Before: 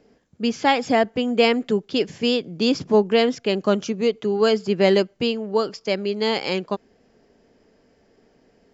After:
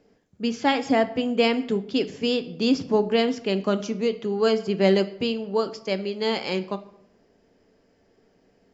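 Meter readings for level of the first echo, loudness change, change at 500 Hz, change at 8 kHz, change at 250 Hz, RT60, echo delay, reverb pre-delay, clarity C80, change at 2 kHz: no echo audible, −3.0 dB, −3.5 dB, can't be measured, −1.5 dB, 0.75 s, no echo audible, 7 ms, 18.0 dB, −3.5 dB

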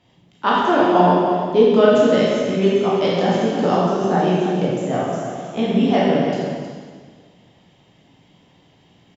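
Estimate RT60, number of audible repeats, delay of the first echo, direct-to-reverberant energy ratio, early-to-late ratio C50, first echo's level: 1.7 s, 1, 315 ms, −7.0 dB, −2.5 dB, −9.0 dB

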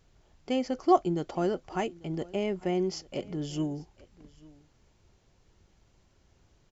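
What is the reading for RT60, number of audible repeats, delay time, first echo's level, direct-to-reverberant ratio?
no reverb audible, 1, 844 ms, −23.0 dB, no reverb audible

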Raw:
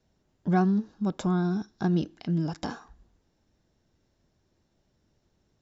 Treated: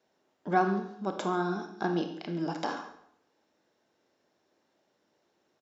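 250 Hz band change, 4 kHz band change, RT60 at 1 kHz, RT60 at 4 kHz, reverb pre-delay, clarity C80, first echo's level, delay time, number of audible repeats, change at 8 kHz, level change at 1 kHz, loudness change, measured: −6.5 dB, +1.0 dB, 0.65 s, 0.55 s, 24 ms, 10.5 dB, −16.5 dB, 138 ms, 1, can't be measured, +4.0 dB, −3.5 dB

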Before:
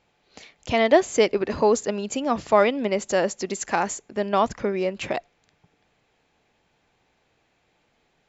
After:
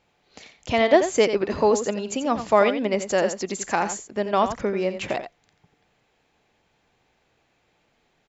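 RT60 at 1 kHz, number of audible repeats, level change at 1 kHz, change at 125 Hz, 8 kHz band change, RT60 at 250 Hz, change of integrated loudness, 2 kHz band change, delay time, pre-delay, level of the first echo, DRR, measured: no reverb audible, 1, +0.5 dB, +0.5 dB, can't be measured, no reverb audible, +0.5 dB, +0.5 dB, 87 ms, no reverb audible, −10.0 dB, no reverb audible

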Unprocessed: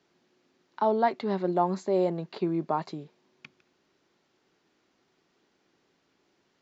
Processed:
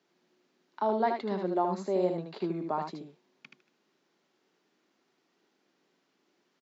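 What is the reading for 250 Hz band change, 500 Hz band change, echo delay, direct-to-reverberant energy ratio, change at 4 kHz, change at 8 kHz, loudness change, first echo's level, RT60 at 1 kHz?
−3.5 dB, −3.0 dB, 77 ms, no reverb audible, −3.0 dB, can't be measured, −3.0 dB, −5.0 dB, no reverb audible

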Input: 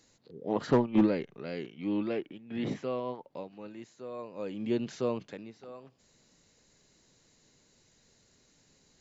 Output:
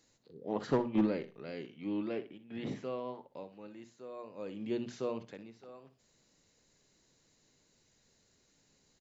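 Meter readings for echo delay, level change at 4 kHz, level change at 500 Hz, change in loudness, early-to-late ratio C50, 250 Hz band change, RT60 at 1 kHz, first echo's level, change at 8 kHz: 61 ms, −5.0 dB, −4.5 dB, −5.0 dB, no reverb audible, −5.0 dB, no reverb audible, −13.5 dB, can't be measured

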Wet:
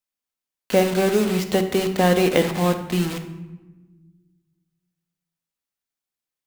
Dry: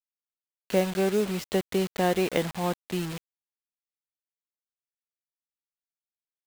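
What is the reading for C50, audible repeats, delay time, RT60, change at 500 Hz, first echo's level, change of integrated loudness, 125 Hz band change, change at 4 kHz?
9.0 dB, no echo audible, no echo audible, 1.2 s, +7.0 dB, no echo audible, +7.0 dB, +8.0 dB, +7.5 dB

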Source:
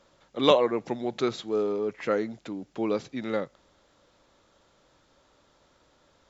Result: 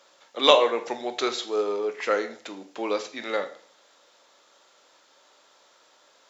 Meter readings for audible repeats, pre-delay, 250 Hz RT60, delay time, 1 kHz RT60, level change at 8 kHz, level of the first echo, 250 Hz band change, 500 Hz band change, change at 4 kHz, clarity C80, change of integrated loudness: no echo audible, 17 ms, 0.50 s, no echo audible, 0.50 s, can't be measured, no echo audible, −4.5 dB, +1.5 dB, +8.0 dB, 16.0 dB, +3.0 dB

